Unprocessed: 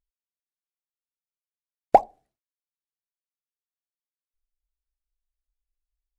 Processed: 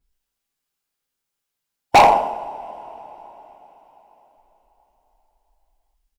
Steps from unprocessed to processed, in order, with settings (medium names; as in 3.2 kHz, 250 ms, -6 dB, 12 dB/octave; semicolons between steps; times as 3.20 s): rattle on loud lows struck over -37 dBFS, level -25 dBFS; formant shift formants +3 st; on a send: feedback delay 100 ms, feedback 48%, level -16 dB; on the sum: two-slope reverb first 0.56 s, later 4.5 s, from -28 dB, DRR -9.5 dB; overload inside the chain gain 11.5 dB; trim +4.5 dB